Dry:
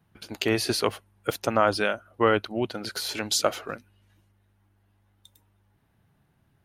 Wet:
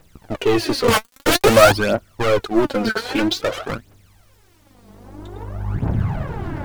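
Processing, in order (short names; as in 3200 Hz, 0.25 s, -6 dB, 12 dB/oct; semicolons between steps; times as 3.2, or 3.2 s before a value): recorder AGC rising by 13 dB/s; LPF 1200 Hz 6 dB/oct; low-pass opened by the level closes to 610 Hz, open at -23.5 dBFS; sample leveller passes 3; soft clip -16 dBFS, distortion -11 dB; added noise pink -60 dBFS; 0.88–1.72 fuzz box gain 43 dB, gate -51 dBFS; phaser 0.51 Hz, delay 4.7 ms, feedback 66%; gain +1 dB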